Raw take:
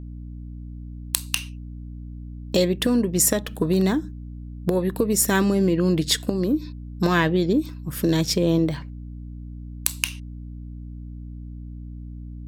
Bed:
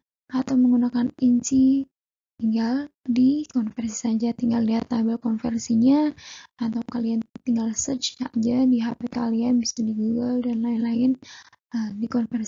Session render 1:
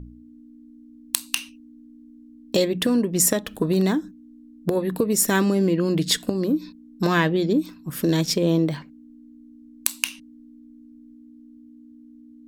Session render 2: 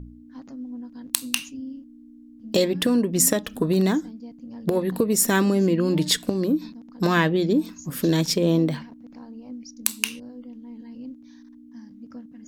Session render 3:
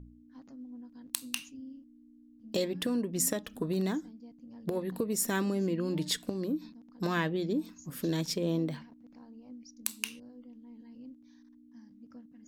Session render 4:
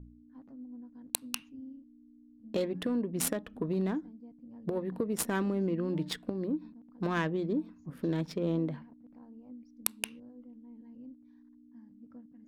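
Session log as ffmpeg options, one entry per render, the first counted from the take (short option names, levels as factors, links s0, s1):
-af "bandreject=f=60:t=h:w=4,bandreject=f=120:t=h:w=4,bandreject=f=180:t=h:w=4"
-filter_complex "[1:a]volume=0.126[s0];[0:a][s0]amix=inputs=2:normalize=0"
-af "volume=0.299"
-af "aexciter=amount=3.9:drive=6.5:freq=9200,adynamicsmooth=sensitivity=2.5:basefreq=1600"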